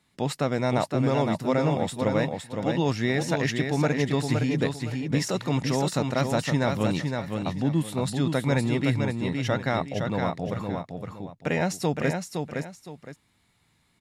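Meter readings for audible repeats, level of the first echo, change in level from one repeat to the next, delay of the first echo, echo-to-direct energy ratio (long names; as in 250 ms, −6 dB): 2, −5.0 dB, −11.0 dB, 514 ms, −4.5 dB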